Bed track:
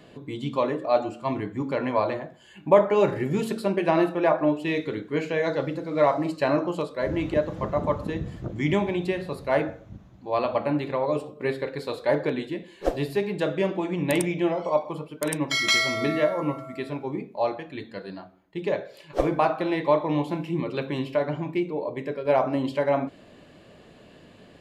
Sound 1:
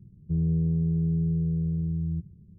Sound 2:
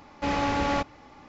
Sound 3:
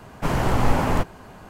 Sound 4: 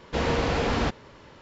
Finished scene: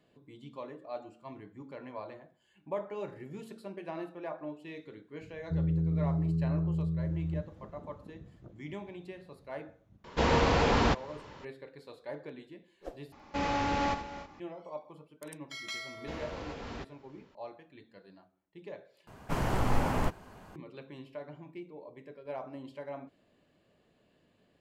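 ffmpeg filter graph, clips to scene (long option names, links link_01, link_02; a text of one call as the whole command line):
ffmpeg -i bed.wav -i cue0.wav -i cue1.wav -i cue2.wav -i cue3.wav -filter_complex "[4:a]asplit=2[link_01][link_02];[0:a]volume=-18.5dB[link_03];[link_01]equalizer=frequency=960:width=3.1:gain=4[link_04];[2:a]aecho=1:1:79|283|317:0.316|0.168|0.15[link_05];[link_02]alimiter=limit=-17.5dB:level=0:latency=1:release=347[link_06];[link_03]asplit=3[link_07][link_08][link_09];[link_07]atrim=end=13.124[link_10];[link_05]atrim=end=1.28,asetpts=PTS-STARTPTS,volume=-5dB[link_11];[link_08]atrim=start=14.396:end=19.074[link_12];[3:a]atrim=end=1.49,asetpts=PTS-STARTPTS,volume=-8.5dB[link_13];[link_09]atrim=start=20.556[link_14];[1:a]atrim=end=2.58,asetpts=PTS-STARTPTS,volume=-4.5dB,afade=type=in:duration=0.004:curve=hsin,afade=type=out:start_time=2.576:duration=0.004:curve=hsin,adelay=229761S[link_15];[link_04]atrim=end=1.41,asetpts=PTS-STARTPTS,volume=-1dB,afade=type=in:duration=0.004:curve=hsin,afade=type=out:start_time=1.406:duration=0.004:curve=hsin,adelay=10040[link_16];[link_06]atrim=end=1.41,asetpts=PTS-STARTPTS,volume=-14.5dB,afade=type=in:duration=0.004:curve=hsin,afade=type=out:start_time=1.406:duration=0.004:curve=hsin,adelay=15940[link_17];[link_10][link_11]acrossfade=duration=0.004:curve1=hsin:curve2=hsin[link_18];[link_18][link_12]acrossfade=duration=0.004:curve1=hsin:curve2=hsin[link_19];[link_19][link_13]acrossfade=duration=0.004:curve1=hsin:curve2=hsin[link_20];[link_20][link_14]acrossfade=duration=0.004:curve1=hsin:curve2=hsin[link_21];[link_21][link_15][link_16][link_17]amix=inputs=4:normalize=0" out.wav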